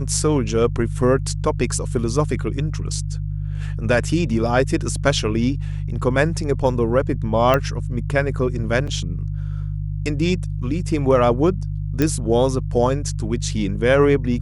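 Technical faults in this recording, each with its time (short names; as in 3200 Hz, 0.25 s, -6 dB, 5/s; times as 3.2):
hum 50 Hz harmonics 3 -25 dBFS
7.54 pop -6 dBFS
8.87–8.88 gap 5.4 ms
12.02 pop -6 dBFS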